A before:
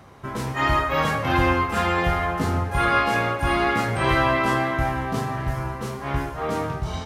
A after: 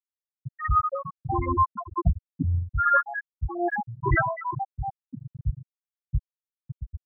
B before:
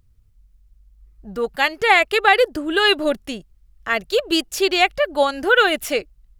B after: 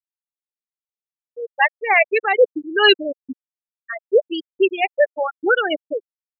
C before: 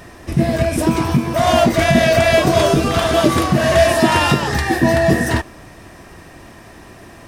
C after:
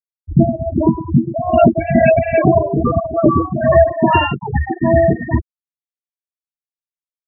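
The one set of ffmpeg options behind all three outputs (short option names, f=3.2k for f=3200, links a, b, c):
-af "afftfilt=real='re*gte(hypot(re,im),0.501)':imag='im*gte(hypot(re,im),0.501)':win_size=1024:overlap=0.75,tremolo=f=2.4:d=0.73,apsyclip=6.5dB,volume=-1.5dB"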